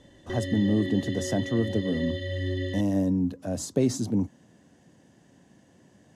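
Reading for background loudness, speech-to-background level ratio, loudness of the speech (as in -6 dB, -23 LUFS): -33.5 LUFS, 6.0 dB, -27.5 LUFS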